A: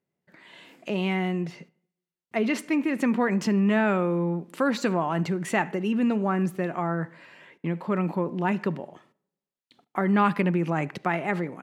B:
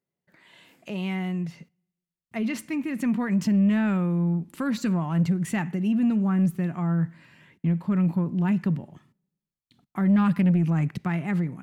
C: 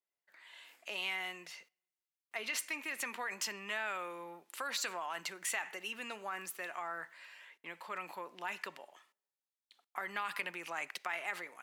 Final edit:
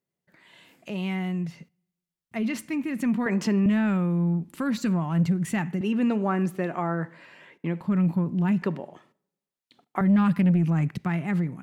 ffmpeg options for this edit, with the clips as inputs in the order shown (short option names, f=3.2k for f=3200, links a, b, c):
-filter_complex "[0:a]asplit=3[a][b][c];[1:a]asplit=4[d][e][f][g];[d]atrim=end=3.262[h];[a]atrim=start=3.258:end=3.662[i];[e]atrim=start=3.658:end=5.812[j];[b]atrim=start=5.808:end=7.812[k];[f]atrim=start=7.808:end=8.622[l];[c]atrim=start=8.618:end=10.012[m];[g]atrim=start=10.008[n];[h][i]acrossfade=d=0.004:c1=hsin:c2=hsin[o];[o][j]acrossfade=d=0.004:c1=hsin:c2=hsin[p];[p][k]acrossfade=d=0.004:c1=hsin:c2=hsin[q];[q][l]acrossfade=d=0.004:c1=hsin:c2=hsin[r];[r][m]acrossfade=d=0.004:c1=hsin:c2=hsin[s];[s][n]acrossfade=d=0.004:c1=hsin:c2=hsin"